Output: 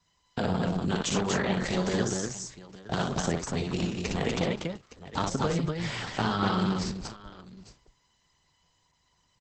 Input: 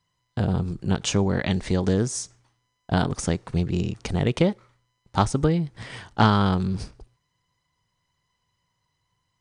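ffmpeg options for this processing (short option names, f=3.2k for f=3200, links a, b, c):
-filter_complex "[0:a]highshelf=f=7.1k:g=8,alimiter=limit=-12.5dB:level=0:latency=1:release=368,acrossover=split=180|610|1500[a][b][c][d];[a]acompressor=threshold=-39dB:ratio=4[e];[b]acompressor=threshold=-34dB:ratio=4[f];[c]acompressor=threshold=-33dB:ratio=4[g];[d]acompressor=threshold=-36dB:ratio=4[h];[e][f][g][h]amix=inputs=4:normalize=0,flanger=delay=4.2:depth=1.3:regen=-63:speed=0.22:shape=sinusoidal,aecho=1:1:42|44|60|202|242|864:0.1|0.119|0.631|0.112|0.708|0.178,volume=6.5dB" -ar 48000 -c:a libopus -b:a 10k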